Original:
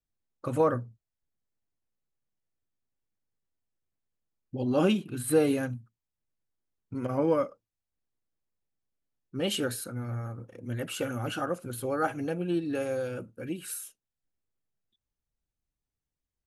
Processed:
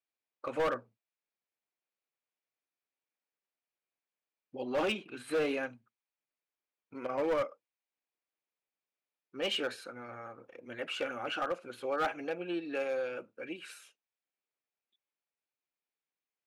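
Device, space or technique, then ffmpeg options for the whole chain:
megaphone: -af "highpass=470,lowpass=3800,equalizer=frequency=2400:width_type=o:width=0.29:gain=6.5,asoftclip=type=hard:threshold=-26.5dB"

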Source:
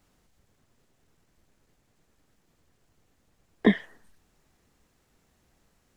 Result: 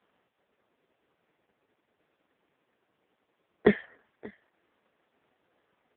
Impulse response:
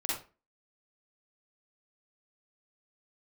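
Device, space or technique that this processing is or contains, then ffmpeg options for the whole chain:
satellite phone: -af "highpass=320,lowpass=3100,aecho=1:1:583:0.0708,volume=5dB" -ar 8000 -c:a libopencore_amrnb -b:a 4750

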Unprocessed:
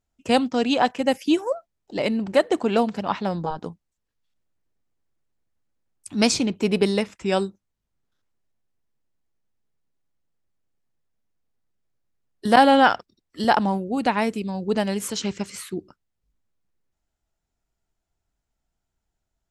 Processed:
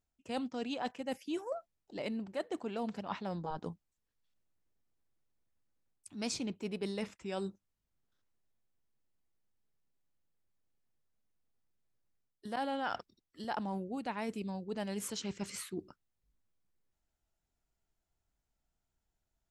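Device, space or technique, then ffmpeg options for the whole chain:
compression on the reversed sound: -af "areverse,acompressor=threshold=-32dB:ratio=4,areverse,volume=-5dB"

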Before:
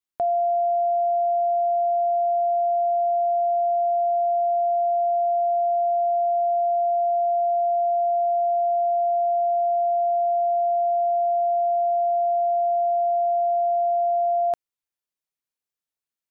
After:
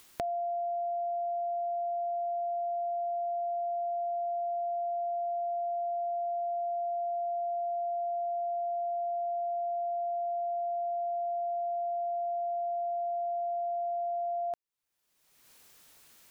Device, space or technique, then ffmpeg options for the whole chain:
upward and downward compression: -af "acompressor=mode=upward:threshold=-28dB:ratio=2.5,acompressor=threshold=-29dB:ratio=6,volume=-3dB"

